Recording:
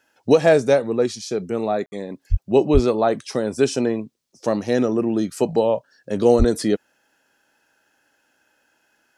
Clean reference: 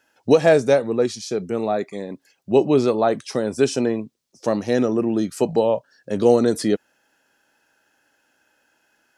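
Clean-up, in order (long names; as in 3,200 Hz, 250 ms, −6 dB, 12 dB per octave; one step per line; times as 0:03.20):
0:02.30–0:02.42: high-pass filter 140 Hz 24 dB per octave
0:02.73–0:02.85: high-pass filter 140 Hz 24 dB per octave
0:06.38–0:06.50: high-pass filter 140 Hz 24 dB per octave
ambience match 0:01.86–0:01.92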